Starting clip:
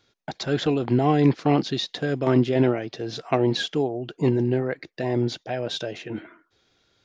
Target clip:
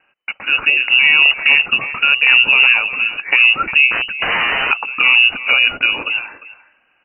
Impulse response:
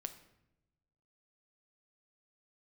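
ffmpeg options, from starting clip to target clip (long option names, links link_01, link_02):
-filter_complex "[0:a]dynaudnorm=framelen=210:gausssize=11:maxgain=8dB,lowshelf=frequency=210:gain=-8,asplit=2[link_01][link_02];[link_02]adelay=350,highpass=300,lowpass=3400,asoftclip=type=hard:threshold=-11.5dB,volume=-15dB[link_03];[link_01][link_03]amix=inputs=2:normalize=0,asettb=1/sr,asplit=3[link_04][link_05][link_06];[link_04]atrim=end=3.914[link_07];[link_05]atrim=start=3.91:end=4.71,asetpts=PTS-STARTPTS,afade=type=in:duration=0.004:curve=qsin,afade=type=out:start_time=0.796:duration=0.004:curve=qsin,aeval=exprs='(mod(11.2*val(0)+1,2)-1)/11.2':channel_layout=same[link_08];[link_06]atrim=start=4.706[link_09];[link_07][link_08]acrossfade=duration=0.004:curve1=hsin:curve2=qsin[link_10];[link_10][link_09]acrossfade=duration=0.004:curve1=qsin:curve2=hsin,asettb=1/sr,asplit=3[link_11][link_12][link_13];[link_11]atrim=end=5.324[link_14];[link_12]atrim=start=5.32:end=6.09,asetpts=PTS-STARTPTS,afade=type=in:duration=0.004:curve=qsin,afade=type=out:start_time=0.766:duration=0.004:curve=qsin,equalizer=frequency=99:width_type=o:width=0.68:gain=14.5[link_15];[link_13]atrim=start=6.086[link_16];[link_14][link_15]acrossfade=duration=0.004:curve1=hsin:curve2=qsin[link_17];[link_17][link_16]acrossfade=duration=0.004:curve1=qsin:curve2=hsin,lowpass=frequency=2600:width_type=q:width=0.5098,lowpass=frequency=2600:width_type=q:width=0.6013,lowpass=frequency=2600:width_type=q:width=0.9,lowpass=frequency=2600:width_type=q:width=2.563,afreqshift=-3000,alimiter=level_in=11dB:limit=-1dB:release=50:level=0:latency=1,volume=-1dB"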